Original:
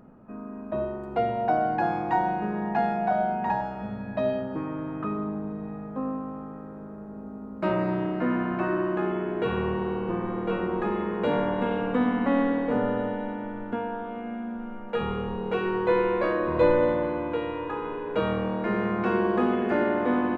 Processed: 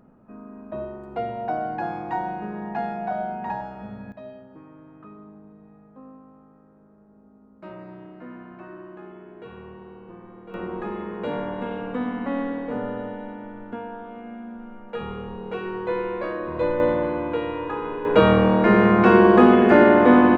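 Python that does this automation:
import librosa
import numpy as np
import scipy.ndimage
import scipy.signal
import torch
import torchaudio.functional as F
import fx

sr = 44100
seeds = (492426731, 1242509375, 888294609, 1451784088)

y = fx.gain(x, sr, db=fx.steps((0.0, -3.0), (4.12, -14.5), (10.54, -3.5), (16.8, 3.0), (18.05, 11.0)))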